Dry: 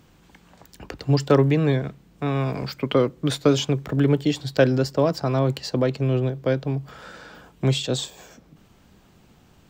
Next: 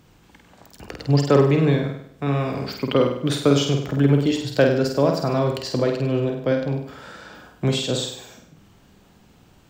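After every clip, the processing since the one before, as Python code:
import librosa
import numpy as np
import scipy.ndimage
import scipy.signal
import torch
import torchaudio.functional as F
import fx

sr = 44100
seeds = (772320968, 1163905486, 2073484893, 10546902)

y = fx.room_flutter(x, sr, wall_m=8.5, rt60_s=0.63)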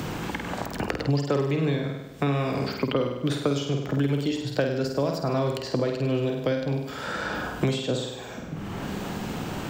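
y = fx.band_squash(x, sr, depth_pct=100)
y = y * 10.0 ** (-5.5 / 20.0)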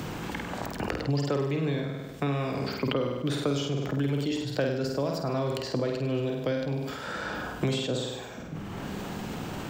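y = fx.sustainer(x, sr, db_per_s=40.0)
y = y * 10.0 ** (-4.0 / 20.0)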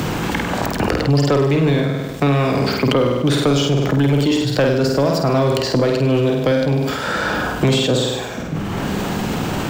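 y = fx.leveller(x, sr, passes=2)
y = y * 10.0 ** (6.5 / 20.0)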